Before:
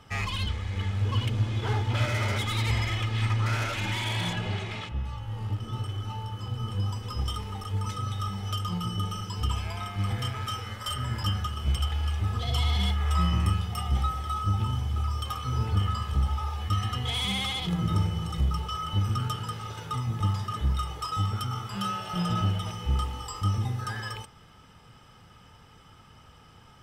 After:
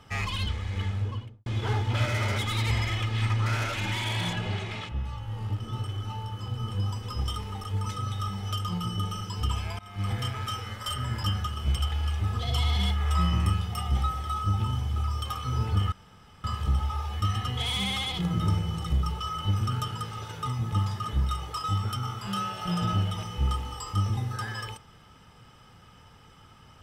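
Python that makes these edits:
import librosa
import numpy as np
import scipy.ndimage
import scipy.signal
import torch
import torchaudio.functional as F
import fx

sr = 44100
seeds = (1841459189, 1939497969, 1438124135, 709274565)

y = fx.studio_fade_out(x, sr, start_s=0.81, length_s=0.65)
y = fx.edit(y, sr, fx.fade_in_from(start_s=9.79, length_s=0.3, floor_db=-21.5),
    fx.insert_room_tone(at_s=15.92, length_s=0.52), tone=tone)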